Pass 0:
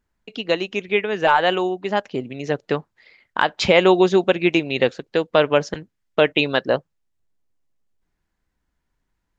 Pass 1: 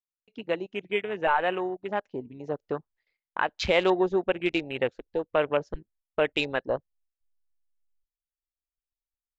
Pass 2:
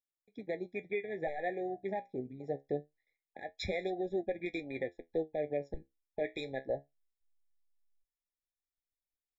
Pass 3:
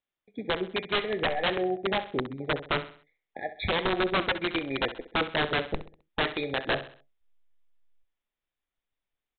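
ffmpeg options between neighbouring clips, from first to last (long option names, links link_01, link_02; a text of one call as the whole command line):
ffmpeg -i in.wav -af "asubboost=boost=11:cutoff=51,agate=range=-17dB:threshold=-50dB:ratio=16:detection=peak,afwtdn=0.0447,volume=-7.5dB" out.wav
ffmpeg -i in.wav -af "alimiter=limit=-20dB:level=0:latency=1:release=239,flanger=delay=8.7:depth=7.6:regen=58:speed=0.24:shape=triangular,afftfilt=real='re*eq(mod(floor(b*sr/1024/830),2),0)':imag='im*eq(mod(floor(b*sr/1024/830),2),0)':win_size=1024:overlap=0.75" out.wav
ffmpeg -i in.wav -af "aresample=8000,aeval=exprs='(mod(28.2*val(0)+1,2)-1)/28.2':channel_layout=same,aresample=44100,aecho=1:1:65|130|195|260:0.224|0.0895|0.0358|0.0143,volume=9dB" out.wav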